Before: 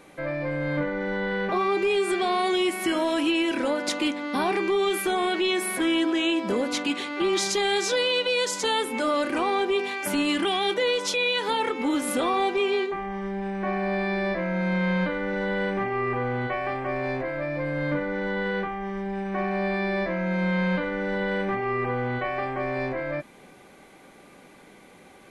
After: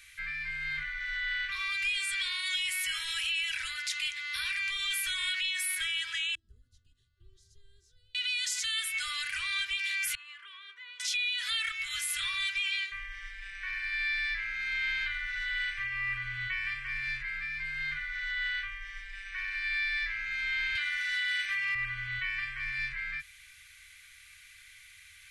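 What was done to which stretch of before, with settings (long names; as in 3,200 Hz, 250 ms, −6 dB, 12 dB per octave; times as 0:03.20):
0:06.35–0:08.15: inverse Chebyshev low-pass filter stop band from 870 Hz
0:10.15–0:11.00: pair of resonant band-passes 680 Hz, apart 1.2 octaves
0:20.75–0:21.75: spectral tilt +3.5 dB per octave
whole clip: inverse Chebyshev band-stop filter 190–840 Hz, stop band 50 dB; low-shelf EQ 400 Hz −3 dB; brickwall limiter −27 dBFS; level +4 dB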